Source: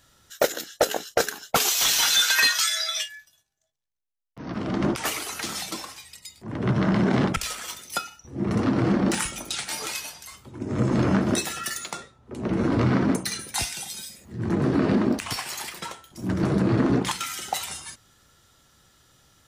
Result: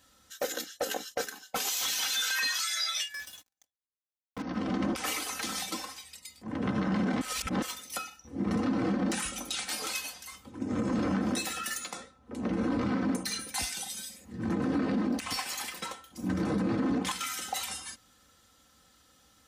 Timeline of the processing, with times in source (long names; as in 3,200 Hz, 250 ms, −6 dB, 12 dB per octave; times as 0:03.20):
0:01.24–0:01.67: tuned comb filter 190 Hz, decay 0.45 s, mix 50%
0:03.14–0:04.42: leveller curve on the samples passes 5
0:07.21–0:07.62: reverse
whole clip: high-pass filter 53 Hz; comb filter 3.9 ms, depth 68%; brickwall limiter −17 dBFS; level −4.5 dB